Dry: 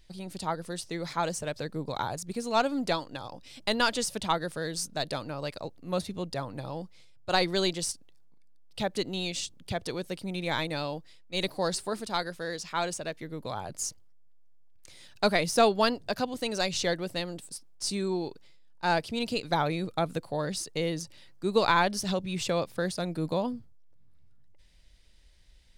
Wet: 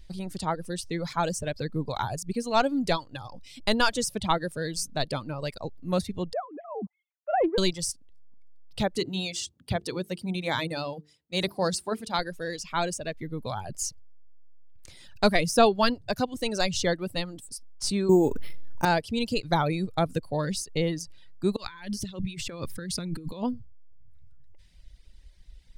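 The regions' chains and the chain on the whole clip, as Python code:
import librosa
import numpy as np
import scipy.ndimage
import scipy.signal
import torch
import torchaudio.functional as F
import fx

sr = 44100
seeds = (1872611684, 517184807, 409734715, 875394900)

y = fx.chain(x, sr, fx.sine_speech(),
    fx.lowpass(hz=1000.0, slope=12),
    fx.doppler_dist(depth_ms=0.16), at=(6.33, 7.58))
y = fx.chain(y, sr, fx.highpass(hz=71.0, slope=12),
    fx.hum_notches(base_hz=50, count=9), at=(8.98, 12.19))
y = fx.chain(y, sr, fx.resample_bad(factor=6, down='filtered', up='hold'),
    fx.peak_eq(hz=300.0, db=8.5, octaves=2.9),
    fx.env_flatten(amount_pct=50), at=(18.09, 18.85))
y = fx.chain(y, sr, fx.peak_eq(hz=700.0, db=-13.5, octaves=0.87),
    fx.over_compress(threshold_db=-39.0, ratio=-1.0), at=(21.56, 23.43))
y = fx.dereverb_blind(y, sr, rt60_s=1.2)
y = fx.low_shelf(y, sr, hz=160.0, db=10.5)
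y = y * librosa.db_to_amplitude(2.0)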